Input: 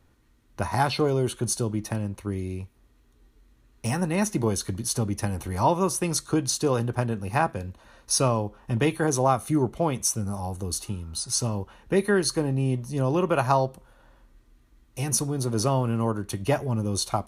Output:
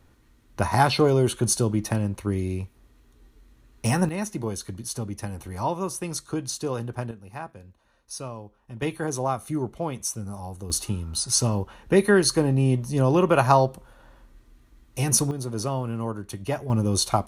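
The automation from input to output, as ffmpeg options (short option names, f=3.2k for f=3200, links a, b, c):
-af "asetnsamples=n=441:p=0,asendcmd='4.09 volume volume -5dB;7.11 volume volume -13dB;8.82 volume volume -4.5dB;10.7 volume volume 4dB;15.31 volume volume -4dB;16.7 volume volume 4dB',volume=4dB"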